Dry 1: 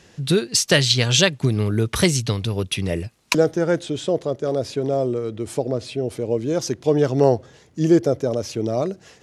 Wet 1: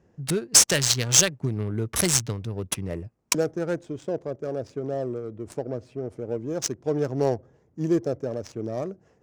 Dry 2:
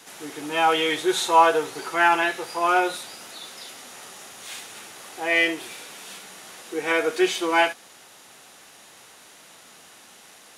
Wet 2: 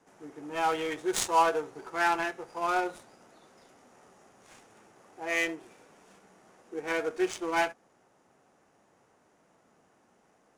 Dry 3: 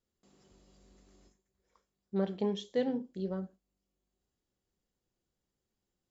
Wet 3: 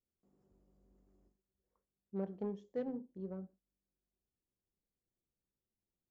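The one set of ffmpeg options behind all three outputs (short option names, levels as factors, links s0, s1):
-af "aexciter=amount=10.6:drive=1.3:freq=5500,adynamicsmooth=sensitivity=1:basefreq=1000,volume=0.422"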